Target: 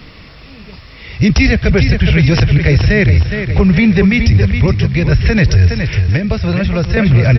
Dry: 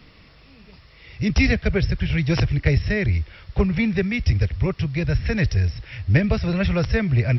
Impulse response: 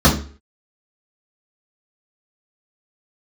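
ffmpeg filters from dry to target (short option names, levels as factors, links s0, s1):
-filter_complex "[0:a]asettb=1/sr,asplit=3[s0][s1][s2];[s0]atrim=end=4.664[s3];[s1]atrim=start=4.66:end=5.12,asetpts=PTS-STARTPTS,afade=t=in:d=0.004:c=qsin,afade=t=out:st=0.456:d=0.004:c=qsin,acompressor=threshold=0.0631:ratio=3[s4];[s2]atrim=start=5.116[s5];[s3][s4]acrossfade=d=0.004:c1=hsin:c2=qsin[s6];[s6][s5]acrossfade=d=0.004:c1=qsin:c2=hsin,aecho=1:1:415|830|1245|1660:0.316|0.126|0.0506|0.0202,asettb=1/sr,asplit=3[s7][s8][s9];[s7]atrim=end=6.084[s10];[s8]atrim=start=6.08:end=6.97,asetpts=PTS-STARTPTS,afade=t=in:d=0.004:c=qsin,afade=t=out:st=0.886:d=0.004:c=qsin,acrossover=split=580|4600[s11][s12][s13];[s11]acompressor=threshold=0.0501:ratio=4[s14];[s12]acompressor=threshold=0.0141:ratio=4[s15];[s13]acompressor=threshold=0.00282:ratio=4[s16];[s14][s15][s16]amix=inputs=3:normalize=0[s17];[s9]atrim=start=6.966[s18];[s10][s17]acrossfade=d=0.004:c1=hsin:c2=qsin[s19];[s19][s18]acrossfade=d=0.004:c1=qsin:c2=hsin,alimiter=level_in=5.01:limit=0.891:release=50:level=0:latency=1,volume=0.891"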